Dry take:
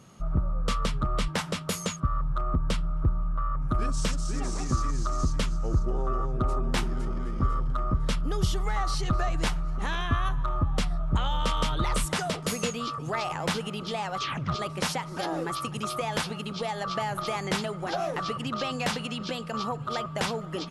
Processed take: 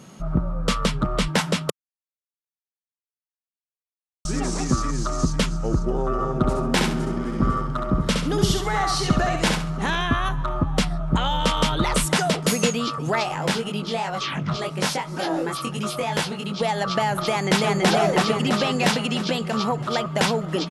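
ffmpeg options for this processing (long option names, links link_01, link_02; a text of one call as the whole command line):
ffmpeg -i in.wav -filter_complex "[0:a]asettb=1/sr,asplit=3[link_01][link_02][link_03];[link_01]atrim=end=6.124[link_04];[link_02]atrim=start=6.12:end=9.9,asetpts=PTS-STARTPTS,afade=type=in:duration=0.004:curve=qsin,afade=type=out:start_time=3.776:duration=0.004:curve=qsin,aecho=1:1:68|136|204|272:0.631|0.183|0.0531|0.0154,atrim=end_sample=166698[link_05];[link_03]atrim=start=9.896[link_06];[link_04][link_05]acrossfade=duration=0.004:curve1=hsin:curve2=qsin[link_07];[link_07][link_06]acrossfade=duration=0.004:curve1=qsin:curve2=hsin,asplit=3[link_08][link_09][link_10];[link_08]afade=type=out:start_time=13.23:duration=0.02[link_11];[link_09]flanger=delay=19.5:depth=2.3:speed=2.9,afade=type=in:start_time=13.23:duration=0.02,afade=type=out:start_time=16.59:duration=0.02[link_12];[link_10]afade=type=in:start_time=16.59:duration=0.02[link_13];[link_11][link_12][link_13]amix=inputs=3:normalize=0,asplit=2[link_14][link_15];[link_15]afade=type=in:start_time=17.28:duration=0.01,afade=type=out:start_time=17.89:duration=0.01,aecho=0:1:330|660|990|1320|1650|1980|2310|2640|2970|3300|3630:0.944061|0.61364|0.398866|0.259263|0.168521|0.109538|0.0712|0.04628|0.030082|0.0195533|0.0127096[link_16];[link_14][link_16]amix=inputs=2:normalize=0,asplit=3[link_17][link_18][link_19];[link_17]atrim=end=1.7,asetpts=PTS-STARTPTS,afade=type=out:start_time=1.696:duration=0.004:curve=hsin[link_20];[link_18]atrim=start=1.7:end=4.25,asetpts=PTS-STARTPTS,volume=0[link_21];[link_19]atrim=start=4.25,asetpts=PTS-STARTPTS,afade=type=in:duration=0.004:curve=hsin[link_22];[link_20][link_21][link_22]concat=n=3:v=0:a=1,lowshelf=frequency=130:width_type=q:width=1.5:gain=-7,bandreject=frequency=1200:width=11,volume=8dB" out.wav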